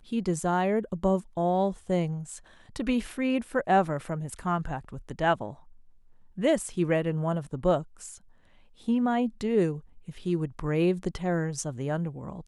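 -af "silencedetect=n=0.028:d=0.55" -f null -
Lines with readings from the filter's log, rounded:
silence_start: 5.50
silence_end: 6.38 | silence_duration: 0.88
silence_start: 8.06
silence_end: 8.88 | silence_duration: 0.82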